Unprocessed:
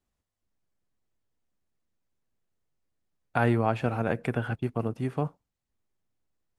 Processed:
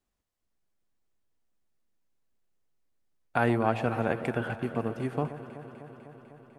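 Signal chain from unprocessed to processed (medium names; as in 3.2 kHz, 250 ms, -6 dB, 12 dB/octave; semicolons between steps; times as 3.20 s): peaking EQ 100 Hz -5.5 dB 1.4 oct; on a send: echo whose repeats swap between lows and highs 125 ms, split 1 kHz, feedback 86%, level -12 dB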